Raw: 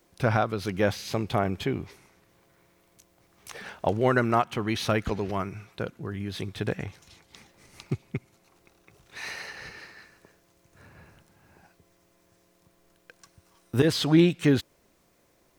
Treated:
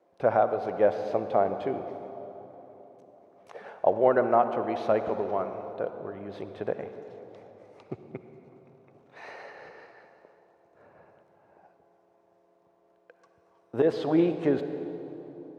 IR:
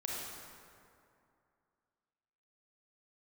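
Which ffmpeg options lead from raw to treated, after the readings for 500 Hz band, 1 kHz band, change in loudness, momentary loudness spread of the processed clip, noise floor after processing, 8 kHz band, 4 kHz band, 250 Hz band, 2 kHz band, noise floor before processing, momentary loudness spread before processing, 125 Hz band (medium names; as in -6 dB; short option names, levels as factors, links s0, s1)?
+3.5 dB, +2.0 dB, -0.5 dB, 21 LU, -65 dBFS, under -20 dB, under -15 dB, -4.0 dB, -8.0 dB, -65 dBFS, 19 LU, -12.5 dB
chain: -filter_complex "[0:a]bandpass=f=610:t=q:w=2:csg=0,asplit=2[s0][s1];[1:a]atrim=start_sample=2205,asetrate=26901,aresample=44100[s2];[s1][s2]afir=irnorm=-1:irlink=0,volume=0.282[s3];[s0][s3]amix=inputs=2:normalize=0,volume=1.5"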